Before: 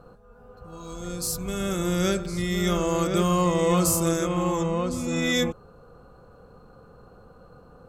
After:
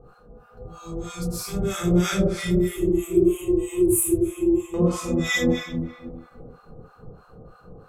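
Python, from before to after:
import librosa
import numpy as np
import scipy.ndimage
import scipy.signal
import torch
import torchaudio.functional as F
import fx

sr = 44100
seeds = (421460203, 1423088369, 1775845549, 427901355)

y = fx.curve_eq(x, sr, hz=(120.0, 190.0, 370.0, 530.0, 870.0, 1400.0, 2600.0, 4900.0, 9800.0, 15000.0), db=(0, -28, 7, -24, -21, -28, -7, -29, 9, 0), at=(2.5, 4.74))
y = fx.room_shoebox(y, sr, seeds[0], volume_m3=1700.0, walls='mixed', distance_m=3.8)
y = fx.harmonic_tremolo(y, sr, hz=3.1, depth_pct=100, crossover_hz=800.0)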